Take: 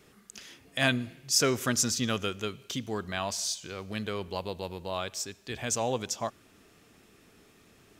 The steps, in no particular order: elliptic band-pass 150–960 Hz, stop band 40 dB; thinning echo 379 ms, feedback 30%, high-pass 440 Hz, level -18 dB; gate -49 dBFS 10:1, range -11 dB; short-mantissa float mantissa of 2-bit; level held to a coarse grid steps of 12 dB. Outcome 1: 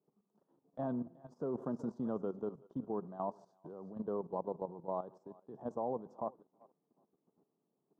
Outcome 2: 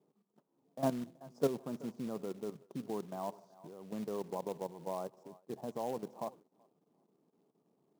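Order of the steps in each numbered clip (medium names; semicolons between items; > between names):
thinning echo > short-mantissa float > elliptic band-pass > gate > level held to a coarse grid; level held to a coarse grid > thinning echo > gate > elliptic band-pass > short-mantissa float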